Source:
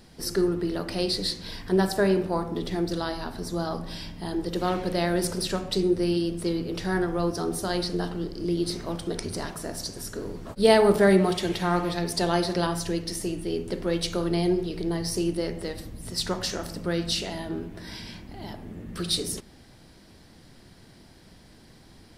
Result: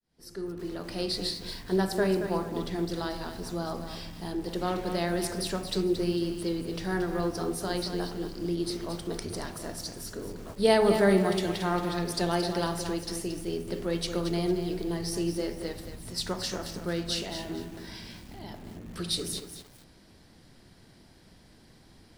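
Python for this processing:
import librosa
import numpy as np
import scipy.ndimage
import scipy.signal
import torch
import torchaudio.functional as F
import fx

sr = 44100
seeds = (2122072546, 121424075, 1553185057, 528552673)

y = fx.fade_in_head(x, sr, length_s=1.15)
y = fx.echo_crushed(y, sr, ms=226, feedback_pct=35, bits=7, wet_db=-8)
y = F.gain(torch.from_numpy(y), -4.0).numpy()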